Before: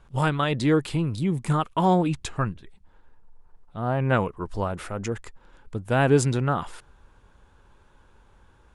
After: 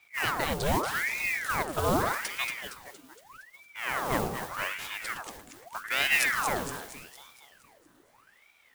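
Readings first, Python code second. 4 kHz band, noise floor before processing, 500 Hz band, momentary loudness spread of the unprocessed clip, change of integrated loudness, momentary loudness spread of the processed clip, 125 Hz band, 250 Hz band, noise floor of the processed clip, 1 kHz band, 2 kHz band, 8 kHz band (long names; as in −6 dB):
+3.5 dB, −58 dBFS, −8.0 dB, 13 LU, −4.5 dB, 19 LU, −15.0 dB, −12.0 dB, −63 dBFS, −3.5 dB, +4.5 dB, +2.0 dB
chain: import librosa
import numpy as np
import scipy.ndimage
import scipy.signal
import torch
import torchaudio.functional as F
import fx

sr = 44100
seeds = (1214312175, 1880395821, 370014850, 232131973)

y = fx.high_shelf(x, sr, hz=5100.0, db=9.5)
y = fx.mod_noise(y, sr, seeds[0], snr_db=12)
y = fx.echo_split(y, sr, split_hz=980.0, low_ms=92, high_ms=232, feedback_pct=52, wet_db=-5.5)
y = fx.ring_lfo(y, sr, carrier_hz=1300.0, swing_pct=80, hz=0.82)
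y = F.gain(torch.from_numpy(y), -5.0).numpy()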